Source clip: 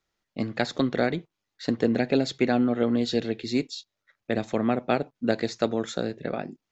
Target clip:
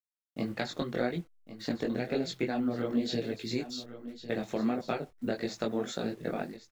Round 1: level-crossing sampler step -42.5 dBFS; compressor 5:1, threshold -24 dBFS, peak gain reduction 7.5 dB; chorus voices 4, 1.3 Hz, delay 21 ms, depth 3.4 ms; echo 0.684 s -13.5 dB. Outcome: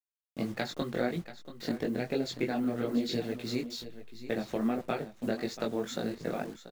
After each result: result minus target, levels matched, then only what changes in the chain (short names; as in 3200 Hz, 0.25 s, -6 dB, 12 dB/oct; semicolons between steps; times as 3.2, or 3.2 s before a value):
echo 0.419 s early; level-crossing sampler: distortion +10 dB
change: echo 1.103 s -13.5 dB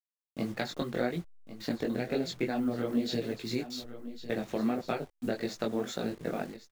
level-crossing sampler: distortion +10 dB
change: level-crossing sampler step -51.5 dBFS